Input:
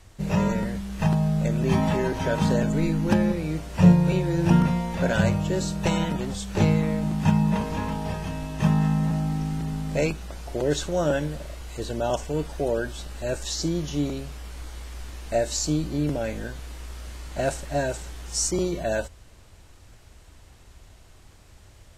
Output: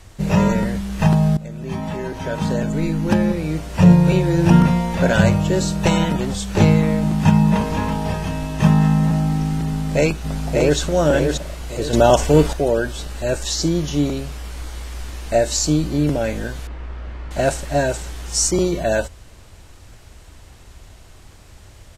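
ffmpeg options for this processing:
-filter_complex "[0:a]asplit=2[s0][s1];[s1]afade=t=in:st=9.66:d=0.01,afade=t=out:st=10.79:d=0.01,aecho=0:1:580|1160|1740|2320:0.630957|0.220835|0.0772923|0.0270523[s2];[s0][s2]amix=inputs=2:normalize=0,asettb=1/sr,asplit=3[s3][s4][s5];[s3]atrim=end=16.674[s6];[s4]atrim=start=16.67:end=17.31,asetpts=PTS-STARTPTS,afade=t=in:d=0.004:c=qsin,afade=t=out:st=0.636:d=0.004:c=qsin,lowpass=2000[s7];[s5]atrim=start=17.306[s8];[s6][s7]acrossfade=d=0.004:c1=hsin:c2=qsin[s9];[s9][s8]acrossfade=d=0.004:c1=qsin:c2=hsin,asplit=4[s10][s11][s12][s13];[s10]atrim=end=1.37,asetpts=PTS-STARTPTS,afade=t=out:st=1.366:d=0.004:c=hsin:silence=0.141254[s14];[s11]atrim=start=1.37:end=11.932,asetpts=PTS-STARTPTS,afade=t=in:d=2.71:silence=0.141254[s15];[s12]atrim=start=11.928:end=12.532,asetpts=PTS-STARTPTS,volume=2.37[s16];[s13]atrim=start=12.528[s17];[s14][s15]concat=n=2:v=0:a=1[s18];[s18][s16]acrossfade=d=0.004:c1=hsin:c2=hsin[s19];[s19][s17]acrossfade=d=0.004:c1=hsin:c2=hsin,alimiter=level_in=2.51:limit=0.891:release=50:level=0:latency=1,volume=0.891"

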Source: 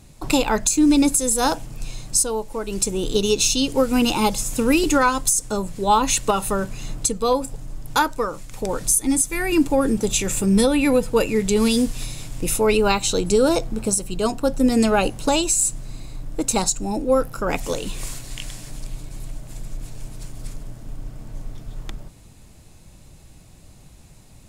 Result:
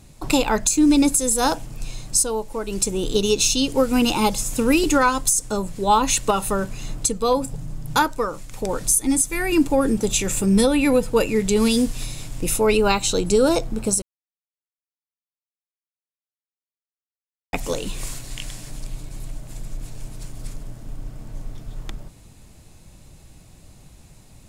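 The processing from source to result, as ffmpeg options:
-filter_complex "[0:a]asettb=1/sr,asplit=3[s0][s1][s2];[s0]atrim=end=7.374[s3];[s1]atrim=start=7.37:end=8.06,asetpts=PTS-STARTPTS,afade=t=in:d=0.004:c=qsin,afade=t=out:st=0.686:d=0.004:c=qsin,equalizer=f=160:t=o:w=0.8:g=10.5[s4];[s2]atrim=start=8.056[s5];[s3][s4]acrossfade=d=0.004:c1=hsin:c2=qsin[s6];[s6][s5]acrossfade=d=0.004:c1=qsin:c2=hsin,asplit=3[s7][s8][s9];[s7]atrim=end=14.02,asetpts=PTS-STARTPTS,afade=t=out:st=14.016:d=0.004:c=hsin[s10];[s8]atrim=start=14.02:end=17.53,asetpts=PTS-STARTPTS,volume=0[s11];[s9]atrim=start=17.53,asetpts=PTS-STARTPTS,afade=t=in:d=0.004:c=hsin[s12];[s10][s11][s12]concat=n=3:v=0:a=1"

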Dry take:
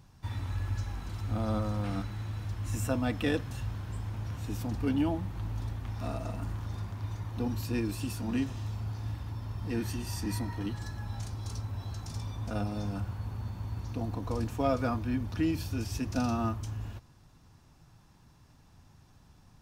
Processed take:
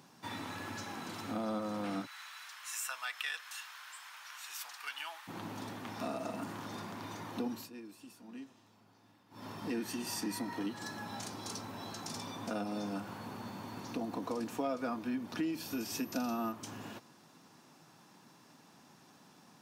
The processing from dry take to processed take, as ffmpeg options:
-filter_complex "[0:a]asplit=3[s0][s1][s2];[s0]afade=t=out:st=2.05:d=0.02[s3];[s1]highpass=f=1200:w=0.5412,highpass=f=1200:w=1.3066,afade=t=in:st=2.05:d=0.02,afade=t=out:st=5.27:d=0.02[s4];[s2]afade=t=in:st=5.27:d=0.02[s5];[s3][s4][s5]amix=inputs=3:normalize=0,asettb=1/sr,asplit=3[s6][s7][s8];[s6]atrim=end=15.624[s9];[s7]atrim=start=15.62:end=16.52,asetpts=PTS-STARTPTS,afade=t=in:d=0.004:c=qsin,afade=t=out:st=0.896:d=0.004:c=qsin,aeval=exprs='val(0)+0.00251*sin(2*PI*13000*n/s)':c=same[s10];[s8]atrim=start=16.516[s11];[s9][s10]acrossfade=d=0.004:c1=hsin:c2=qsin[s12];[s12][s11]acrossfade=d=0.004:c1=qsin:c2=hsin,asplit=3[s13][s14][s15];[s13]atrim=end=7.7,asetpts=PTS-STARTPTS,afade=t=out:st=7.53:d=0.17:silence=0.0891251[s16];[s14]atrim=start=7.7:end=9.3,asetpts=PTS-STARTPTS,volume=0.0891[s17];[s15]atrim=start=9.3,asetpts=PTS-STARTPTS,afade=t=in:d=0.17:silence=0.0891251[s18];[s16][s17][s18]concat=n=3:v=0:a=1,highpass=f=200:w=0.5412,highpass=f=200:w=1.3066,acompressor=threshold=0.00891:ratio=3,volume=1.78"

